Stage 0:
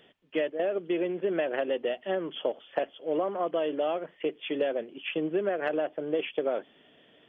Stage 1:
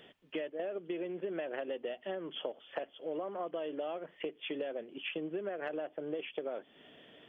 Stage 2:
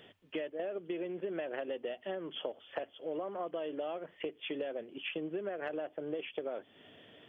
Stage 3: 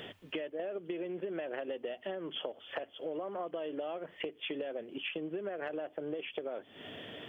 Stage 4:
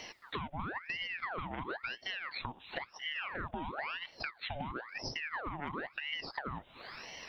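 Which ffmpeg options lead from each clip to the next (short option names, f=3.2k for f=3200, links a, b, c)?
-af "acompressor=threshold=-41dB:ratio=3,volume=2dB"
-af "equalizer=f=100:t=o:w=0.31:g=13"
-af "acompressor=threshold=-53dB:ratio=2.5,volume=11.5dB"
-af "aeval=exprs='val(0)*sin(2*PI*1400*n/s+1400*0.8/0.98*sin(2*PI*0.98*n/s))':c=same,volume=1.5dB"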